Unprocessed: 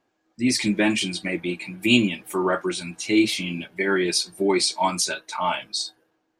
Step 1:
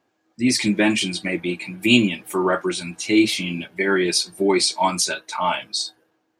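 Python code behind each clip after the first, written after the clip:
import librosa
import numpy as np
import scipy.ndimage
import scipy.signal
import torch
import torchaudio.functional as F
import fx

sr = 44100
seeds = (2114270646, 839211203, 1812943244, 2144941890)

y = scipy.signal.sosfilt(scipy.signal.butter(2, 48.0, 'highpass', fs=sr, output='sos'), x)
y = y * 10.0 ** (2.5 / 20.0)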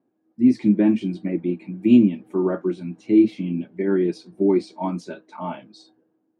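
y = fx.bandpass_q(x, sr, hz=240.0, q=1.5)
y = y * 10.0 ** (4.5 / 20.0)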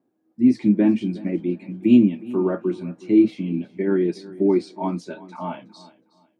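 y = fx.echo_feedback(x, sr, ms=367, feedback_pct=26, wet_db=-19)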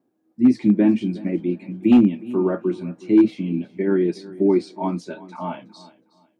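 y = np.clip(x, -10.0 ** (-8.0 / 20.0), 10.0 ** (-8.0 / 20.0))
y = y * 10.0 ** (1.0 / 20.0)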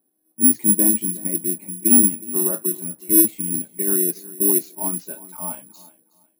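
y = (np.kron(x[::4], np.eye(4)[0]) * 4)[:len(x)]
y = y * 10.0 ** (-6.5 / 20.0)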